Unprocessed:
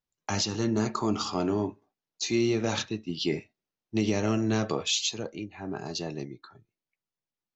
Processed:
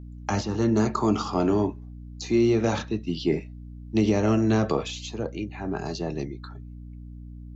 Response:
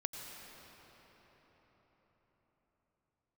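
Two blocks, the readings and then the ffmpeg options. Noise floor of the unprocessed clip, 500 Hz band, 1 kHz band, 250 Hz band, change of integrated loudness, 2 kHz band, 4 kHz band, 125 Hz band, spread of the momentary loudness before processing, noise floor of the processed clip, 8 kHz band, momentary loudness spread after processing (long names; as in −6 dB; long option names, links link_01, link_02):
below −85 dBFS, +5.0 dB, +4.5 dB, +5.0 dB, +4.0 dB, +0.5 dB, −6.0 dB, +5.5 dB, 11 LU, −41 dBFS, can't be measured, 21 LU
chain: -filter_complex "[0:a]acrossover=split=100|640|1600[link_01][link_02][link_03][link_04];[link_04]acompressor=threshold=-43dB:ratio=6[link_05];[link_01][link_02][link_03][link_05]amix=inputs=4:normalize=0,aeval=exprs='val(0)+0.00631*(sin(2*PI*60*n/s)+sin(2*PI*2*60*n/s)/2+sin(2*PI*3*60*n/s)/3+sin(2*PI*4*60*n/s)/4+sin(2*PI*5*60*n/s)/5)':channel_layout=same,volume=5dB"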